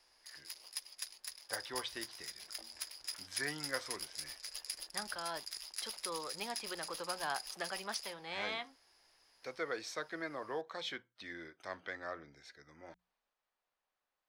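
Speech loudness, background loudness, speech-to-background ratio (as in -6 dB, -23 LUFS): -43.0 LUFS, -43.5 LUFS, 0.5 dB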